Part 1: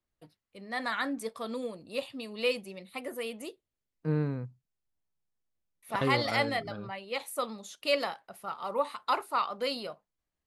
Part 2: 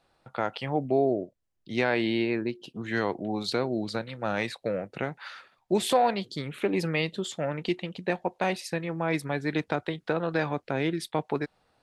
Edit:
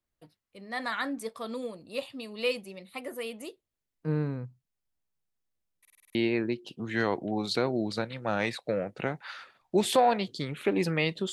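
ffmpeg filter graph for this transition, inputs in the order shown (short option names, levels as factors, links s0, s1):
-filter_complex "[0:a]apad=whole_dur=11.32,atrim=end=11.32,asplit=7[s0][s1][s2][s3][s4][s5][s6];[s0]atrim=end=5.852[s7];[s1]atrim=start=5.798:end=5.852[s8];[s2]atrim=start=5.798:end=5.852[s9];[s3]atrim=start=5.798:end=5.852[s10];[s4]atrim=start=5.798:end=5.852[s11];[s5]atrim=start=5.798:end=5.852[s12];[s6]atrim=start=5.798:end=5.852[s13];[1:a]atrim=start=2.118:end=7.29[s14];[s7][s8]acrossfade=d=0.004:c1=hsin:c2=hsin[s15];[s15][s9]acrossfade=d=0.004:c1=hsin:c2=hsin[s16];[s16][s10]acrossfade=d=0.004:c1=hsin:c2=hsin[s17];[s17][s11]acrossfade=d=0.004:c1=hsin:c2=hsin[s18];[s18][s12]acrossfade=d=0.004:c1=hsin:c2=hsin[s19];[s19][s13]acrossfade=d=0.004:c1=hsin:c2=hsin[s20];[s20][s14]acrossfade=d=0.004:c1=hsin:c2=hsin"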